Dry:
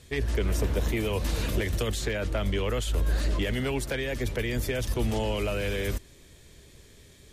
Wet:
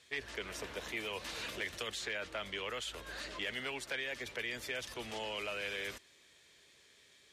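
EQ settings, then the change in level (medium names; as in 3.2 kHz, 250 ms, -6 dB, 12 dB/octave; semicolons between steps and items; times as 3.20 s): band-pass filter 2.5 kHz, Q 0.55; -3.5 dB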